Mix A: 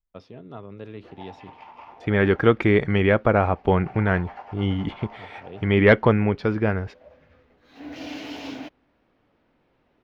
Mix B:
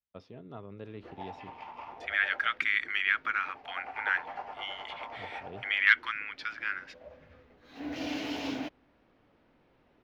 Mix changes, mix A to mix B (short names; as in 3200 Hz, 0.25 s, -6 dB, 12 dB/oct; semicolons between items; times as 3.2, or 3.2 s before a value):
first voice -5.5 dB; second voice: add steep high-pass 1400 Hz 36 dB/oct